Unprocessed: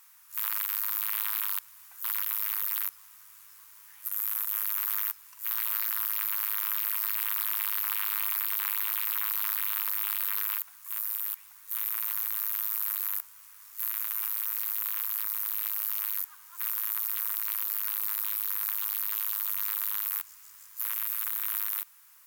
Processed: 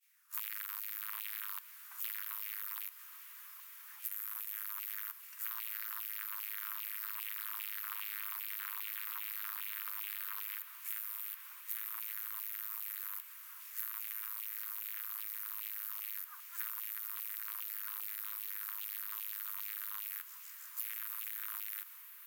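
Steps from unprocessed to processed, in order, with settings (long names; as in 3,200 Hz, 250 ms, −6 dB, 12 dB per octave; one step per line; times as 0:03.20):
auto-filter high-pass saw down 2.5 Hz 940–2,700 Hz
downward expander −45 dBFS
downward compressor 10 to 1, threshold −39 dBFS, peak gain reduction 15.5 dB
on a send: feedback delay with all-pass diffusion 1,080 ms, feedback 72%, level −13.5 dB
on the sum: level +2 dB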